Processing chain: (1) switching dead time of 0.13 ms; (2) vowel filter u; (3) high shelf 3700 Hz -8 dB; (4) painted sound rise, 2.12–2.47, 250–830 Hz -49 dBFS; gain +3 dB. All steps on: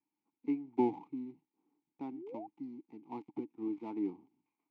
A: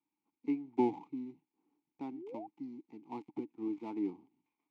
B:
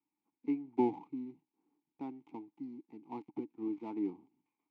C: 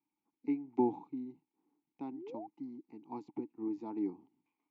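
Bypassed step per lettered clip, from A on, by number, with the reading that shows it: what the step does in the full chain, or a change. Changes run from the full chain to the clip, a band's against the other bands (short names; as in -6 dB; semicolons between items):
3, 2 kHz band +2.0 dB; 4, momentary loudness spread change +1 LU; 1, distortion -19 dB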